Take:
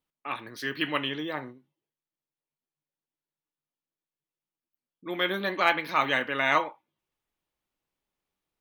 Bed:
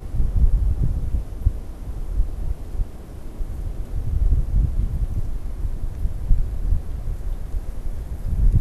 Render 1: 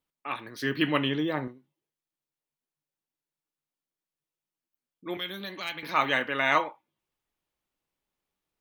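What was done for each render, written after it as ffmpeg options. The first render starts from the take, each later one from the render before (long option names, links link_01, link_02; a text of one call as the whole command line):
ffmpeg -i in.wav -filter_complex "[0:a]asettb=1/sr,asplit=3[link_01][link_02][link_03];[link_01]atrim=end=0.604[link_04];[link_02]atrim=start=0.6:end=1.48,asetpts=PTS-STARTPTS,afade=type=in:duration=0.004:curve=qsin,afade=type=out:start_time=0.876:duration=0.004:curve=qsin,lowshelf=frequency=430:gain=9.5[link_05];[link_03]atrim=start=1.476[link_06];[link_04][link_05]acrossfade=duration=0.004:curve1=hsin:curve2=qsin[link_07];[link_07][link_06]acrossfade=duration=0.004:curve1=qsin:curve2=hsin,asettb=1/sr,asplit=3[link_08][link_09][link_10];[link_08]atrim=end=5.174[link_11];[link_09]atrim=start=5.17:end=5.83,asetpts=PTS-STARTPTS,afade=type=in:duration=0.004:curve=qsin,afade=type=out:start_time=0.656:duration=0.004:curve=qsin,acrossover=split=160|3000[link_12][link_13][link_14];[link_13]acompressor=threshold=-43dB:ratio=3:attack=3.2:release=140:knee=2.83:detection=peak[link_15];[link_12][link_15][link_14]amix=inputs=3:normalize=0[link_16];[link_10]atrim=start=5.826[link_17];[link_11][link_16]acrossfade=duration=0.004:curve1=hsin:curve2=qsin[link_18];[link_18][link_17]acrossfade=duration=0.004:curve1=qsin:curve2=hsin" out.wav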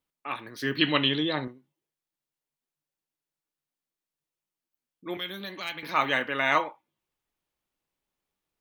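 ffmpeg -i in.wav -filter_complex "[0:a]asettb=1/sr,asplit=3[link_01][link_02][link_03];[link_01]atrim=end=0.784[link_04];[link_02]atrim=start=0.78:end=1.45,asetpts=PTS-STARTPTS,afade=type=in:duration=0.004:curve=qsin,afade=type=out:start_time=0.666:duration=0.004:curve=qsin,lowpass=frequency=4000:width_type=q:width=6.7[link_05];[link_03]atrim=start=1.446[link_06];[link_04][link_05]acrossfade=duration=0.004:curve1=hsin:curve2=qsin[link_07];[link_07][link_06]acrossfade=duration=0.004:curve1=qsin:curve2=hsin" out.wav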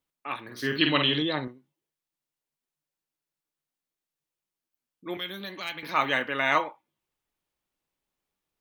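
ffmpeg -i in.wav -filter_complex "[0:a]asettb=1/sr,asplit=3[link_01][link_02][link_03];[link_01]atrim=end=0.444[link_04];[link_02]atrim=start=0.44:end=1.22,asetpts=PTS-STARTPTS,afade=type=in:duration=0.004:curve=qsin,afade=type=out:start_time=0.776:duration=0.004:curve=qsin,asplit=2[link_05][link_06];[link_06]adelay=49,volume=-5dB[link_07];[link_05][link_07]amix=inputs=2:normalize=0,atrim=end_sample=34398[link_08];[link_03]atrim=start=1.216[link_09];[link_04][link_08]acrossfade=duration=0.004:curve1=hsin:curve2=qsin[link_10];[link_10][link_09]acrossfade=duration=0.004:curve1=qsin:curve2=hsin" out.wav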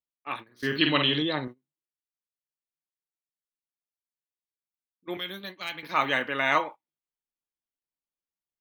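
ffmpeg -i in.wav -af "agate=range=-17dB:threshold=-38dB:ratio=16:detection=peak" out.wav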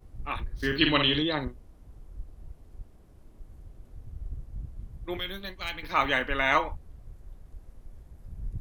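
ffmpeg -i in.wav -i bed.wav -filter_complex "[1:a]volume=-19dB[link_01];[0:a][link_01]amix=inputs=2:normalize=0" out.wav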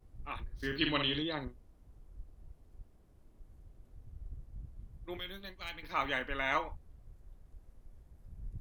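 ffmpeg -i in.wav -af "volume=-8.5dB" out.wav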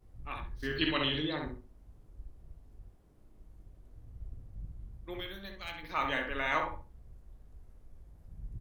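ffmpeg -i in.wav -filter_complex "[0:a]asplit=2[link_01][link_02];[link_02]adelay=19,volume=-11dB[link_03];[link_01][link_03]amix=inputs=2:normalize=0,asplit=2[link_04][link_05];[link_05]adelay=65,lowpass=frequency=1700:poles=1,volume=-3dB,asplit=2[link_06][link_07];[link_07]adelay=65,lowpass=frequency=1700:poles=1,volume=0.26,asplit=2[link_08][link_09];[link_09]adelay=65,lowpass=frequency=1700:poles=1,volume=0.26,asplit=2[link_10][link_11];[link_11]adelay=65,lowpass=frequency=1700:poles=1,volume=0.26[link_12];[link_06][link_08][link_10][link_12]amix=inputs=4:normalize=0[link_13];[link_04][link_13]amix=inputs=2:normalize=0" out.wav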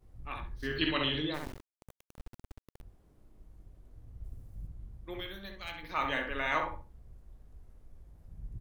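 ffmpeg -i in.wav -filter_complex "[0:a]asplit=3[link_01][link_02][link_03];[link_01]afade=type=out:start_time=1.33:duration=0.02[link_04];[link_02]acrusher=bits=5:dc=4:mix=0:aa=0.000001,afade=type=in:start_time=1.33:duration=0.02,afade=type=out:start_time=2.81:duration=0.02[link_05];[link_03]afade=type=in:start_time=2.81:duration=0.02[link_06];[link_04][link_05][link_06]amix=inputs=3:normalize=0,asettb=1/sr,asplit=3[link_07][link_08][link_09];[link_07]atrim=end=4.244[link_10];[link_08]atrim=start=4.24:end=4.67,asetpts=PTS-STARTPTS,afade=type=in:duration=0.004:curve=qsin,afade=type=out:start_time=0.426:duration=0.004:curve=qsin,highshelf=frequency=6900:gain=11.5[link_11];[link_09]atrim=start=4.666[link_12];[link_10][link_11]acrossfade=duration=0.004:curve1=hsin:curve2=qsin[link_13];[link_13][link_12]acrossfade=duration=0.004:curve1=qsin:curve2=hsin" out.wav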